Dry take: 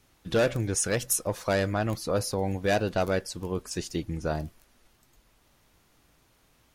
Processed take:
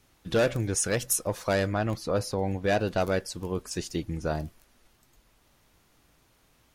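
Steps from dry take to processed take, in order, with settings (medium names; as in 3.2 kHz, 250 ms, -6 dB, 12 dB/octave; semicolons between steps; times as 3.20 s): 1.66–2.79 s: treble shelf 8.4 kHz -> 5.9 kHz -8.5 dB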